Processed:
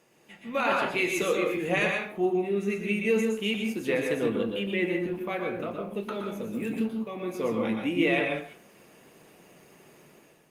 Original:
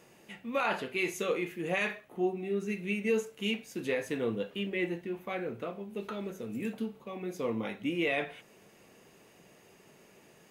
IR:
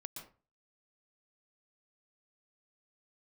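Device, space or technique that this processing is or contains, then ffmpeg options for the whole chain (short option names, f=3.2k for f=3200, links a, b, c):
far-field microphone of a smart speaker: -filter_complex "[1:a]atrim=start_sample=2205[a];[0:a][a]afir=irnorm=-1:irlink=0,highpass=f=140:p=1,dynaudnorm=f=200:g=5:m=9dB,volume=1dB" -ar 48000 -c:a libopus -b:a 48k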